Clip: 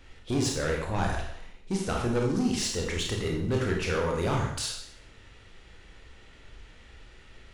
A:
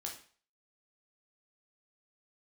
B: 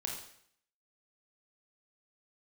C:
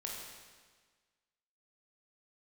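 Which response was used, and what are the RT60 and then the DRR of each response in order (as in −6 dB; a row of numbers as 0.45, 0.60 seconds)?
B; 0.45, 0.65, 1.5 seconds; −0.5, −0.5, −2.5 decibels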